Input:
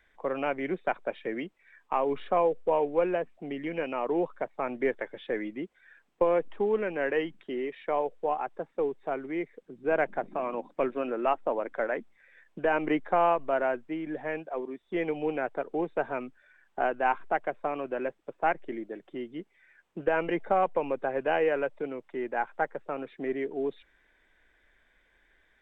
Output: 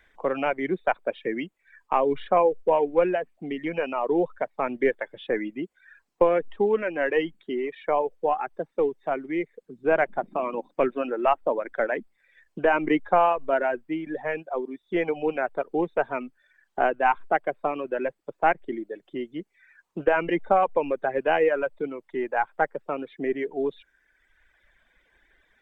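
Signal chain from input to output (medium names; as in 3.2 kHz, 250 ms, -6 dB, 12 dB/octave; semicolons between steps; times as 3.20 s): reverb removal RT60 1.3 s; trim +5.5 dB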